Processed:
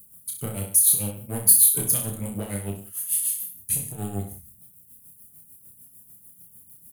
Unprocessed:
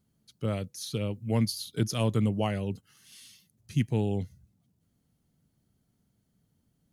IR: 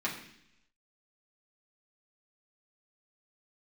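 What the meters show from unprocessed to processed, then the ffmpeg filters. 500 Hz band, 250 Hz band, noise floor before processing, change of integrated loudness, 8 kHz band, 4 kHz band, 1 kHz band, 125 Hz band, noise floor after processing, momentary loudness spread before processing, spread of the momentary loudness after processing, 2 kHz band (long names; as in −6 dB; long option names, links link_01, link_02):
−4.0 dB, −4.0 dB, −74 dBFS, +9.5 dB, +24.0 dB, +0.5 dB, −3.5 dB, −3.5 dB, −54 dBFS, 8 LU, 18 LU, −2.5 dB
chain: -filter_complex "[0:a]asplit=2[link_01][link_02];[link_02]acompressor=threshold=-39dB:ratio=6,volume=1dB[link_03];[link_01][link_03]amix=inputs=2:normalize=0,alimiter=limit=-18dB:level=0:latency=1:release=121,asoftclip=type=tanh:threshold=-27dB,tremolo=f=6.7:d=0.85,aexciter=amount=15.6:drive=8.4:freq=8300,asplit=2[link_04][link_05];[link_05]aecho=0:1:30|63|99.3|139.2|183.2:0.631|0.398|0.251|0.158|0.1[link_06];[link_04][link_06]amix=inputs=2:normalize=0,volume=2dB"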